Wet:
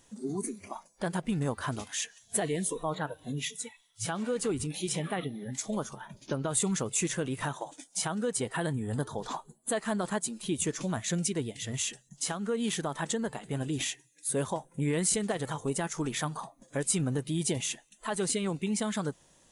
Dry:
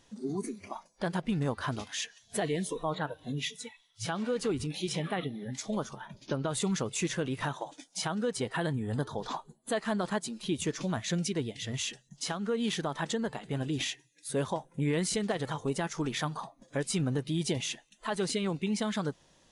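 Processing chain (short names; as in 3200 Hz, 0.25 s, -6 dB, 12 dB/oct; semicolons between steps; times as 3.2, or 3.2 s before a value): resonant high shelf 6300 Hz +7 dB, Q 1.5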